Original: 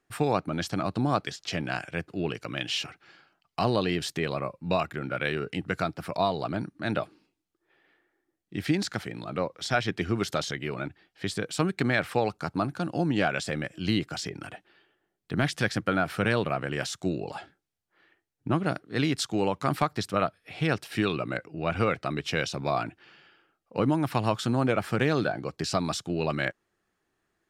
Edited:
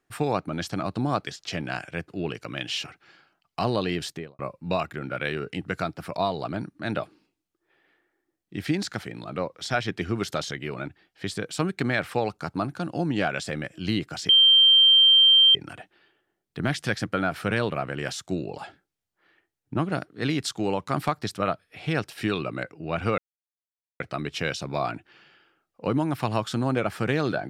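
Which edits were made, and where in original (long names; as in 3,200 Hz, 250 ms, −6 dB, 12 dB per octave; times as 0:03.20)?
0:04.03–0:04.39: fade out and dull
0:14.29: insert tone 3,150 Hz −12.5 dBFS 1.26 s
0:21.92: splice in silence 0.82 s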